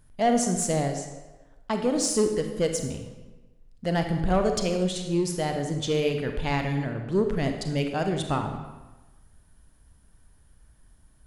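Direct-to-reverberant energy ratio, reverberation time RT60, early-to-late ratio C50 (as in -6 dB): 5.0 dB, 1.2 s, 6.0 dB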